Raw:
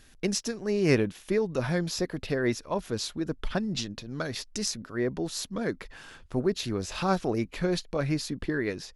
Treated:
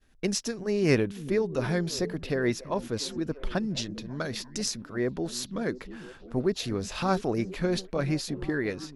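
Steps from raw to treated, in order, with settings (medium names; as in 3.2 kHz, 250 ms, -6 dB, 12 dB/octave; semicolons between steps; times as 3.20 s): expander -50 dBFS; on a send: repeats whose band climbs or falls 346 ms, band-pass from 190 Hz, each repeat 0.7 oct, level -11 dB; on the sum: tape noise reduction on one side only decoder only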